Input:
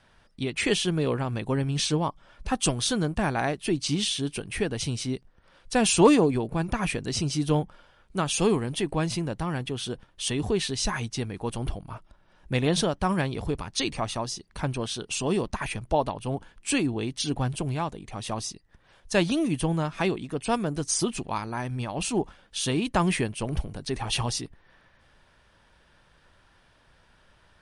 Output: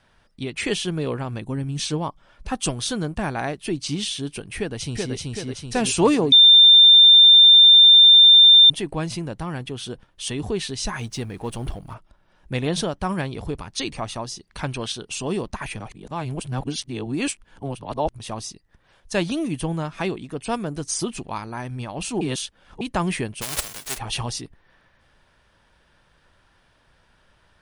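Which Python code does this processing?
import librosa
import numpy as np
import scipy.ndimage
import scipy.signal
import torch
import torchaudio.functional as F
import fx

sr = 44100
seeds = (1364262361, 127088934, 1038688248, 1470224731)

y = fx.spec_box(x, sr, start_s=1.4, length_s=0.4, low_hz=380.0, high_hz=5600.0, gain_db=-6)
y = fx.echo_throw(y, sr, start_s=4.57, length_s=0.58, ms=380, feedback_pct=60, wet_db=-1.5)
y = fx.law_mismatch(y, sr, coded='mu', at=(10.99, 11.94))
y = fx.peak_eq(y, sr, hz=3200.0, db=6.0, octaves=2.9, at=(14.47, 14.92))
y = fx.envelope_flatten(y, sr, power=0.1, at=(23.41, 23.97), fade=0.02)
y = fx.edit(y, sr, fx.bleep(start_s=6.32, length_s=2.38, hz=3590.0, db=-7.0),
    fx.reverse_span(start_s=15.8, length_s=2.4),
    fx.reverse_span(start_s=22.21, length_s=0.6), tone=tone)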